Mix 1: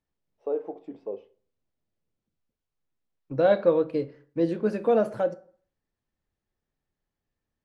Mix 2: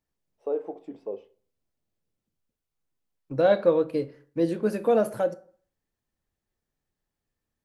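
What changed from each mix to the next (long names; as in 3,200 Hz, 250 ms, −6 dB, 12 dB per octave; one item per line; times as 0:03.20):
master: remove high-frequency loss of the air 87 metres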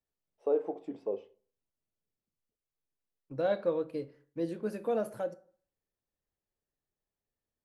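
second voice −9.5 dB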